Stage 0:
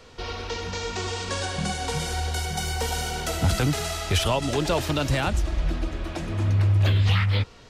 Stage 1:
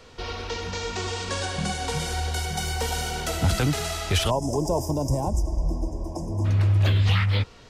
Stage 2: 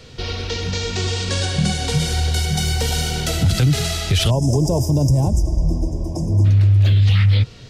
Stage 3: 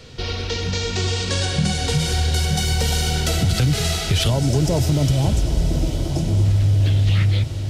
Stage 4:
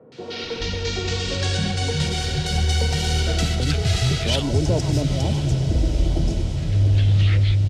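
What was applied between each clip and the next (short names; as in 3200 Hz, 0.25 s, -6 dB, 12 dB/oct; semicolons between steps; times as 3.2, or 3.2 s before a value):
spectral gain 4.3–6.45, 1100–4800 Hz -29 dB
ten-band EQ 125 Hz +11 dB, 1000 Hz -8 dB, 4000 Hz +4 dB; limiter -14 dBFS, peak gain reduction 8 dB; gain +5.5 dB
compressor, threshold -14 dBFS, peak gain reduction 4 dB; diffused feedback echo 0.993 s, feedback 59%, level -10 dB
air absorption 57 m; three bands offset in time mids, highs, lows 0.12/0.42 s, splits 160/1000 Hz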